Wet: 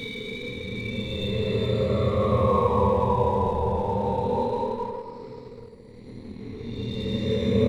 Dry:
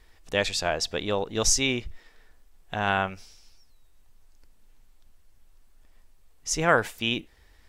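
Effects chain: coarse spectral quantiser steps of 30 dB; rippled EQ curve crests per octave 0.93, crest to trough 16 dB; Paulstretch 21×, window 0.05 s, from 1.02 s; doubling 25 ms -6 dB; in parallel at -3 dB: crossover distortion -38.5 dBFS; on the sum: feedback echo behind a band-pass 261 ms, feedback 34%, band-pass 650 Hz, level -9 dB; trim -5.5 dB

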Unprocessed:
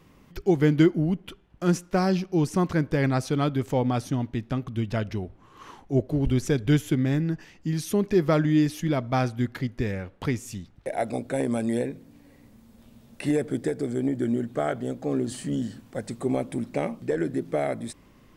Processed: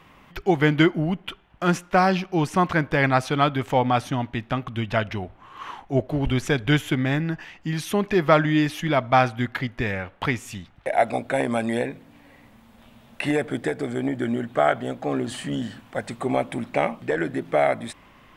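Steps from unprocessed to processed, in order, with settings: high-order bell 1.5 kHz +10 dB 2.8 oct

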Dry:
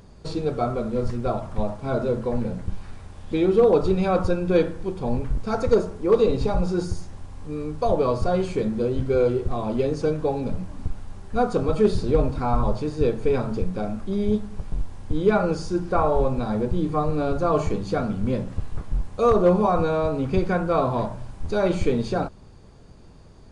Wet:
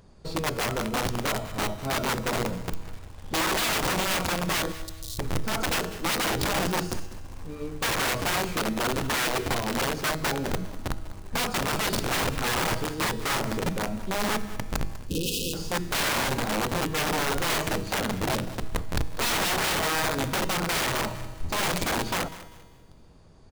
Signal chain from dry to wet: integer overflow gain 19 dB; hum notches 50/100/150/200/250/300/350/400/450 Hz; in parallel at -9.5 dB: bit crusher 6-bit; 4.72–5.19 s: on the sum: Chebyshev band-stop 100–3900 Hz, order 4; 15.06–15.54 s: spectral selection erased 550–2500 Hz; feedback comb 160 Hz, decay 1.7 s, mix 60%; on a send: feedback delay 197 ms, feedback 29%, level -16.5 dB; on the sum: trim +3 dB

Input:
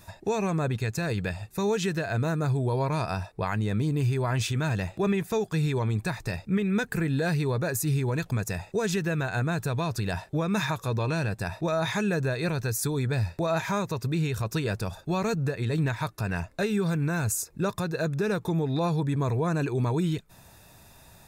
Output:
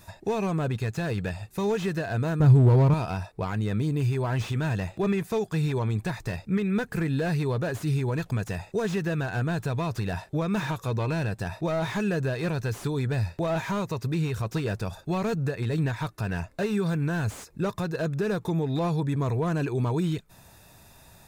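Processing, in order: 2.40–2.94 s: bass shelf 370 Hz +12 dB; slew-rate limiter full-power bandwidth 49 Hz

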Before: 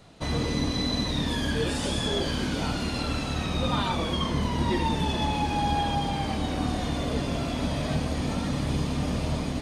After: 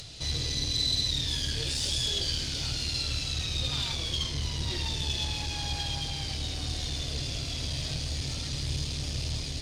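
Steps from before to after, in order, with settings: one-sided clip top -31 dBFS; FFT filter 130 Hz 0 dB, 190 Hz -16 dB, 360 Hz -10 dB, 1.1 kHz -15 dB, 4.9 kHz +10 dB, 12 kHz -2 dB; upward compressor, threshold -35 dBFS

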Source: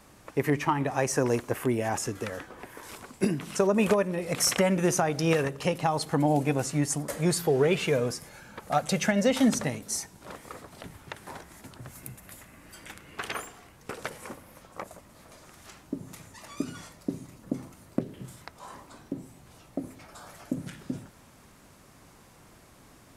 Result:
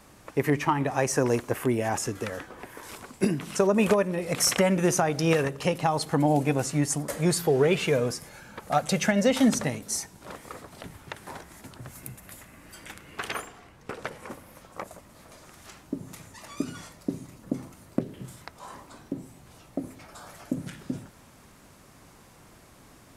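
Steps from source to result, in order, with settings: 13.40–14.29 s: treble shelf 7.8 kHz -> 4.5 kHz -10.5 dB; trim +1.5 dB

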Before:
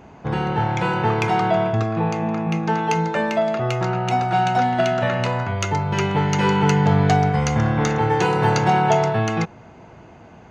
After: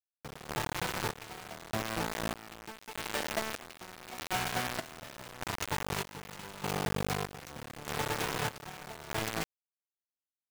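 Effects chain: 2.33–4.35 s: elliptic band-pass 230–5400 Hz, stop band 40 dB; compression 6:1, threshold -33 dBFS, peak gain reduction 19 dB; bit crusher 5-bit; trance gate "....xxxxx." 122 bpm -12 dB

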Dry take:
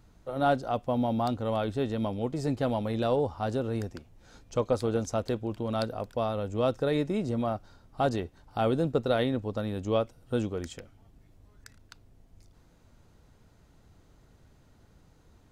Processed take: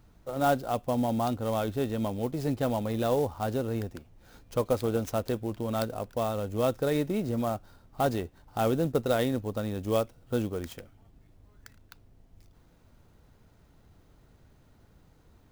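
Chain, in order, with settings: sampling jitter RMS 0.026 ms

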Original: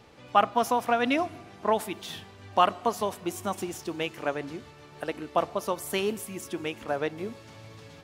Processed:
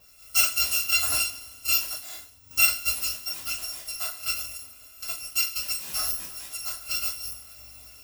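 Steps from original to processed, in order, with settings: bit-reversed sample order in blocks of 256 samples; two-slope reverb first 0.3 s, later 1.7 s, from -21 dB, DRR -7.5 dB; 1.92–2.51 s: three bands expanded up and down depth 100%; trim -7.5 dB

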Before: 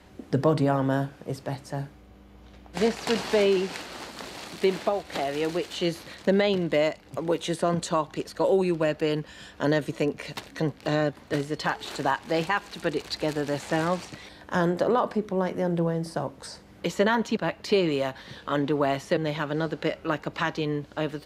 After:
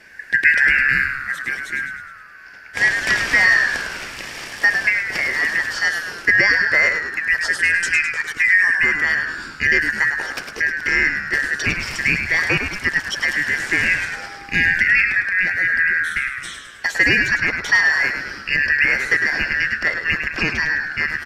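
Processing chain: four frequency bands reordered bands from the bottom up 2143; frequency-shifting echo 104 ms, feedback 55%, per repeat -82 Hz, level -6.5 dB; 14.12–14.74 s: whistle 800 Hz -45 dBFS; trim +6.5 dB

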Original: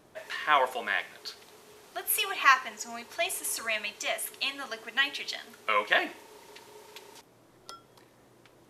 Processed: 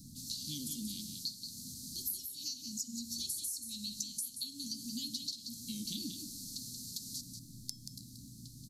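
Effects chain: Chebyshev band-stop 260–4200 Hz, order 5; compression 20:1, threshold -50 dBFS, peak gain reduction 25.5 dB; delay 181 ms -7 dB; trim +13.5 dB

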